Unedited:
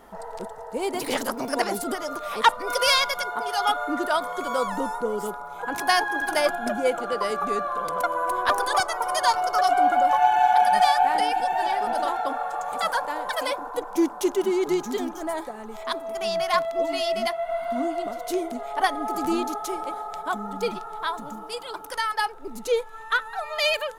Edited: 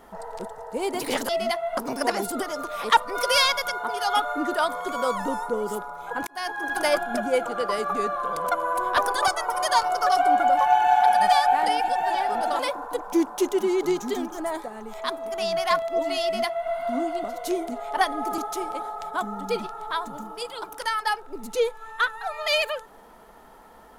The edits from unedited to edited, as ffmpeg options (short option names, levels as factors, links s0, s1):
-filter_complex "[0:a]asplit=6[s0][s1][s2][s3][s4][s5];[s0]atrim=end=1.292[s6];[s1]atrim=start=17.048:end=17.532[s7];[s2]atrim=start=1.288:end=5.79,asetpts=PTS-STARTPTS,afade=t=out:st=4.498:d=0.004:c=hsin[s8];[s3]atrim=start=5.79:end=12.112,asetpts=PTS-STARTPTS,afade=t=in:d=0.51[s9];[s4]atrim=start=13.418:end=19.212[s10];[s5]atrim=start=19.498[s11];[s6][s7]acrossfade=d=0.004:c1=hsin:c2=hsin[s12];[s8][s9]concat=n=2:v=0:a=1[s13];[s12][s13]acrossfade=d=0.004:c1=hsin:c2=hsin[s14];[s14][s10]acrossfade=d=0.004:c1=hsin:c2=hsin[s15];[s15][s11]acrossfade=d=0.004:c1=hsin:c2=hsin"